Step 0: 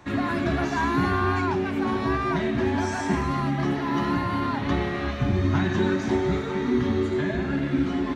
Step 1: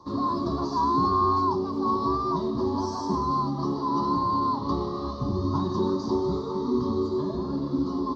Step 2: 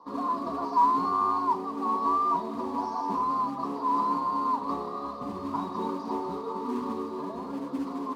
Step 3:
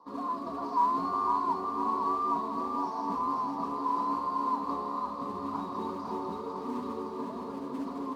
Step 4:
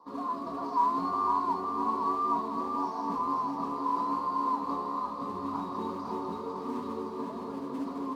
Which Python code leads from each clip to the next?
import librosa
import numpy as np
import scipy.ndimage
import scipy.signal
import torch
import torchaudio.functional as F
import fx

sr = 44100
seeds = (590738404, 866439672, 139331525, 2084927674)

y1 = fx.curve_eq(x, sr, hz=(120.0, 490.0, 720.0, 1100.0, 1500.0, 2500.0, 4700.0, 7900.0), db=(0, 6, -4, 14, -19, -27, 13, -12))
y1 = y1 * librosa.db_to_amplitude(-6.0)
y2 = y1 + 0.55 * np.pad(y1, (int(4.2 * sr / 1000.0), 0))[:len(y1)]
y2 = fx.mod_noise(y2, sr, seeds[0], snr_db=19)
y2 = fx.bandpass_q(y2, sr, hz=900.0, q=0.9)
y2 = y2 * librosa.db_to_amplitude(1.0)
y3 = fx.echo_feedback(y2, sr, ms=504, feedback_pct=55, wet_db=-5.5)
y3 = y3 * librosa.db_to_amplitude(-4.5)
y4 = fx.doubler(y3, sr, ms=22.0, db=-11.5)